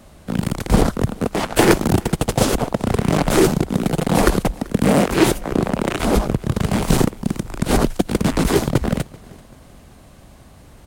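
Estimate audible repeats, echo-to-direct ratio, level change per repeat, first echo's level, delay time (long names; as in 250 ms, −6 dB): 2, −22.5 dB, −7.5 dB, −23.5 dB, 386 ms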